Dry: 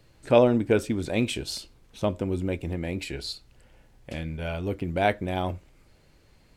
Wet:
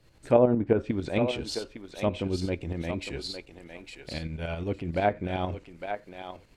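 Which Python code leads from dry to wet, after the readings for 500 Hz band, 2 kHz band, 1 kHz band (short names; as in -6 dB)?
-1.5 dB, -3.5 dB, -1.5 dB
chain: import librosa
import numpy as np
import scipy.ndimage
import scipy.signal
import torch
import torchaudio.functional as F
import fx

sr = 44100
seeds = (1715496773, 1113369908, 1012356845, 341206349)

y = fx.tremolo_shape(x, sr, shape='saw_up', hz=11.0, depth_pct=60)
y = fx.env_lowpass_down(y, sr, base_hz=1200.0, full_db=-20.0)
y = fx.echo_thinned(y, sr, ms=857, feedback_pct=16, hz=600.0, wet_db=-6.0)
y = y * 10.0 ** (1.0 / 20.0)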